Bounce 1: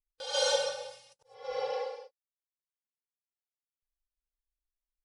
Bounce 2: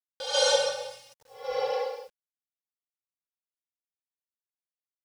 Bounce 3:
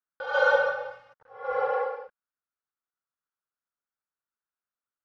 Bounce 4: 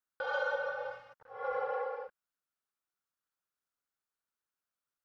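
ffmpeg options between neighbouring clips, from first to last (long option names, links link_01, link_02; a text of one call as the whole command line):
ffmpeg -i in.wav -af "acrusher=bits=10:mix=0:aa=0.000001,volume=5dB" out.wav
ffmpeg -i in.wav -af "lowpass=frequency=1400:width_type=q:width=4.2" out.wav
ffmpeg -i in.wav -af "acompressor=threshold=-33dB:ratio=4" out.wav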